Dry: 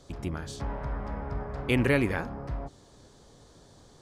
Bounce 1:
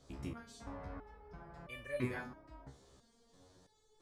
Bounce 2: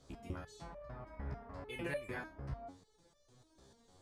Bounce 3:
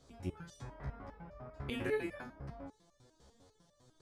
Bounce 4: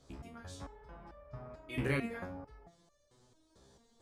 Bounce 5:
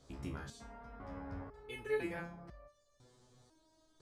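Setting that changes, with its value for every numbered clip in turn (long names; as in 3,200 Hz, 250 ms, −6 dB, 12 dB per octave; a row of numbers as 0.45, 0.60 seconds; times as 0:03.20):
step-sequenced resonator, speed: 3, 6.7, 10, 4.5, 2 Hertz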